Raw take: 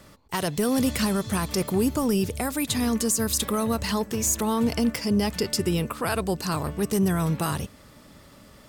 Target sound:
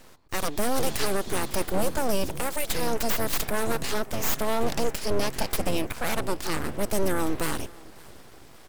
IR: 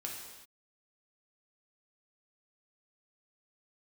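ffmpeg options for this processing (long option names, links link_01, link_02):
-af "aecho=1:1:561|1122|1683:0.075|0.0352|0.0166,aeval=exprs='abs(val(0))':channel_layout=same,volume=1dB"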